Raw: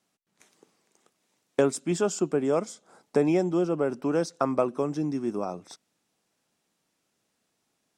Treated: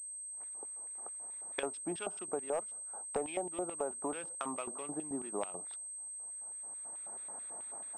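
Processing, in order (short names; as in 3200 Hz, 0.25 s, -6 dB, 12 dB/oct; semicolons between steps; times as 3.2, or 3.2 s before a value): Wiener smoothing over 15 samples; recorder AGC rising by 16 dB/s; LFO band-pass square 4.6 Hz 790–3100 Hz; hard clip -24 dBFS, distortion -14 dB; compressor 2.5:1, threshold -40 dBFS, peak gain reduction 8.5 dB; pulse-width modulation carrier 8300 Hz; gain +4.5 dB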